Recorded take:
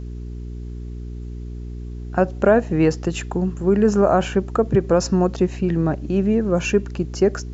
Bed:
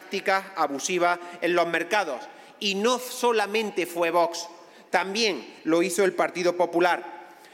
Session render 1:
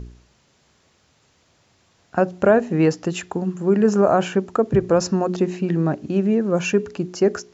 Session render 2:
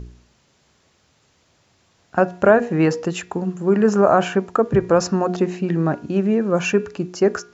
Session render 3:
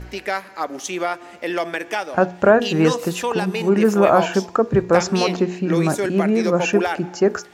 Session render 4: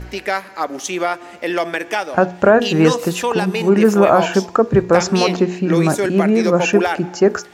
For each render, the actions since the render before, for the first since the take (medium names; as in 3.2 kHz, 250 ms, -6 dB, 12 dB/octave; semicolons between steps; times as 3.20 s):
de-hum 60 Hz, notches 7
de-hum 238 Hz, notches 11; dynamic bell 1.3 kHz, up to +5 dB, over -32 dBFS, Q 0.75
add bed -1 dB
trim +3.5 dB; peak limiter -1 dBFS, peak gain reduction 3 dB